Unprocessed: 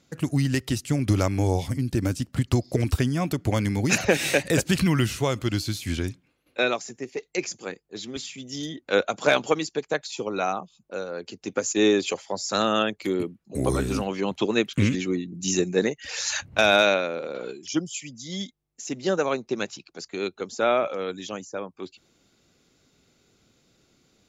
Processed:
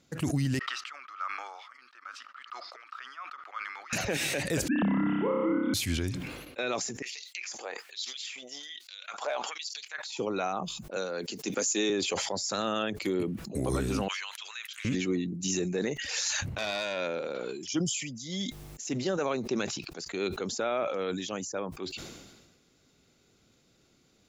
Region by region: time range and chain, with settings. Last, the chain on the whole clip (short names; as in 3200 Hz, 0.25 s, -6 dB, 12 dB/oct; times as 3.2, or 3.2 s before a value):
0.59–3.93 ladder high-pass 1200 Hz, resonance 85% + air absorption 230 m
4.68–5.74 sine-wave speech + bell 2300 Hz -8.5 dB 0.36 oct + flutter echo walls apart 5.2 m, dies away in 1.2 s
7.02–10.18 high shelf 7100 Hz -8 dB + compressor 4:1, threshold -32 dBFS + LFO high-pass sine 1.2 Hz 630–4600 Hz
10.96–11.9 HPF 150 Hz 24 dB/oct + high shelf 3000 Hz +10.5 dB
14.08–14.85 HPF 1400 Hz 24 dB/oct + compressor 4:1, threshold -36 dBFS
16.05–17.64 high shelf 4200 Hz +5.5 dB + core saturation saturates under 1900 Hz
whole clip: limiter -18 dBFS; sustainer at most 42 dB/s; gain -2.5 dB